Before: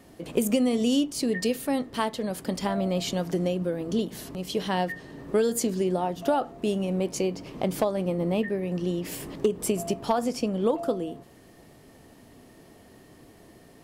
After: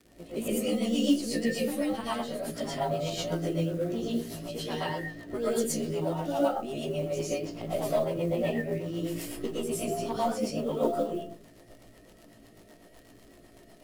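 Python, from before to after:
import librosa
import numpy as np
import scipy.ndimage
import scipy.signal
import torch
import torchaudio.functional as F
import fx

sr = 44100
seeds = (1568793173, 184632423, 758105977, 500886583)

y = fx.frame_reverse(x, sr, frame_ms=35.0)
y = fx.rev_freeverb(y, sr, rt60_s=0.4, hf_ratio=0.5, predelay_ms=75, drr_db=-8.5)
y = fx.dmg_crackle(y, sr, seeds[0], per_s=87.0, level_db=-36.0)
y = fx.rotary(y, sr, hz=8.0)
y = fx.mod_noise(y, sr, seeds[1], snr_db=30)
y = y * 10.0 ** (-5.5 / 20.0)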